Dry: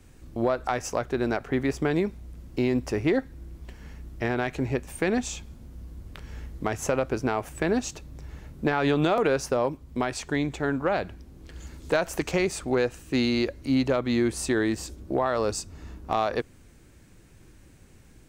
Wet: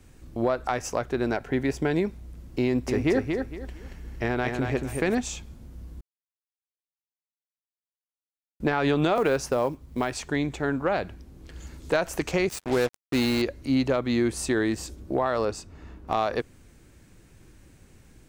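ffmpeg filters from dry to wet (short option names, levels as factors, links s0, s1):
-filter_complex "[0:a]asettb=1/sr,asplit=3[s0][s1][s2];[s0]atrim=end=1.334[s3];[s1]atrim=start=1.33:end=2.05,asetpts=PTS-STARTPTS,afade=t=in:d=0.004:c=qsin,afade=t=out:st=0.716:d=0.004:c=qsin,asuperstop=centerf=1200:order=4:qfactor=6.3[s4];[s2]atrim=start=2.046[s5];[s3][s4]acrossfade=d=0.004:c1=hsin:c2=qsin[s6];[s6][s5]acrossfade=d=0.004:c1=qsin:c2=hsin,asettb=1/sr,asplit=3[s7][s8][s9];[s7]atrim=end=2.654[s10];[s8]atrim=start=2.65:end=5.15,asetpts=PTS-STARTPTS,afade=t=in:d=0.004:c=qsin,afade=t=out:st=2.496:d=0.004:c=qsin,aecho=1:1:230|460|690|920:0.562|0.157|0.0441|0.0123,atrim=end_sample=110250[s11];[s9]atrim=start=5.146[s12];[s10][s11]acrossfade=d=0.004:c1=hsin:c2=qsin[s13];[s13][s12]acrossfade=d=0.004:c1=qsin:c2=hsin,asettb=1/sr,asplit=3[s14][s15][s16];[s14]atrim=end=9.154[s17];[s15]atrim=start=9.15:end=10.28,asetpts=PTS-STARTPTS,afade=t=in:d=0.004:c=qsin,afade=t=out:st=1.126:d=0.004:c=qsin,acrusher=bits=8:mode=log:mix=0:aa=0.000001[s18];[s16]atrim=start=10.276[s19];[s17][s18]acrossfade=d=0.004:c1=hsin:c2=qsin[s20];[s20][s19]acrossfade=d=0.004:c1=qsin:c2=hsin,asettb=1/sr,asplit=3[s21][s22][s23];[s21]atrim=end=12.494[s24];[s22]atrim=start=12.49:end=13.42,asetpts=PTS-STARTPTS,afade=t=in:d=0.004:c=qsin,afade=t=out:st=0.926:d=0.004:c=qsin,acrusher=bits=4:mix=0:aa=0.5[s25];[s23]atrim=start=13.416[s26];[s24][s25]acrossfade=d=0.004:c1=hsin:c2=qsin[s27];[s27][s26]acrossfade=d=0.004:c1=qsin:c2=hsin,asettb=1/sr,asplit=3[s28][s29][s30];[s28]atrim=end=15.454[s31];[s29]atrim=start=15.45:end=16.08,asetpts=PTS-STARTPTS,afade=t=in:d=0.004:c=qsin,afade=t=out:st=0.626:d=0.004:c=qsin,bass=f=250:g=-3,treble=f=4000:g=-9[s32];[s30]atrim=start=16.076[s33];[s31][s32]acrossfade=d=0.004:c1=hsin:c2=qsin[s34];[s34][s33]acrossfade=d=0.004:c1=qsin:c2=hsin,asplit=3[s35][s36][s37];[s35]atrim=end=6.01,asetpts=PTS-STARTPTS,afade=t=out:st=6.006:d=0.004:c=hsin[s38];[s36]atrim=start=6.01:end=8.6,asetpts=PTS-STARTPTS,volume=0[s39];[s37]atrim=start=8.6,asetpts=PTS-STARTPTS,afade=t=in:d=0.004:c=hsin[s40];[s38][s39][s40]concat=n=3:v=0:a=1"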